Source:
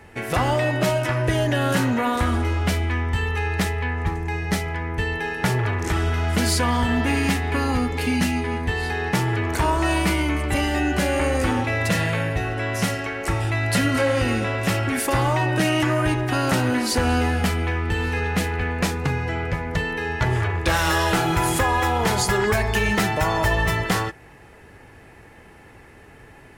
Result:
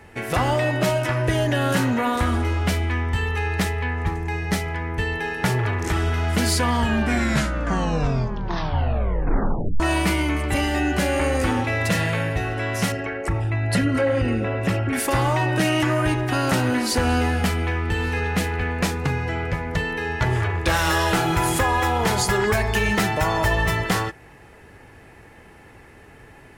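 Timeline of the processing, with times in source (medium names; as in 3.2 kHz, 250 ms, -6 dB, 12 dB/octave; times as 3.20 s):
6.71 s: tape stop 3.09 s
12.92–14.93 s: resonances exaggerated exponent 1.5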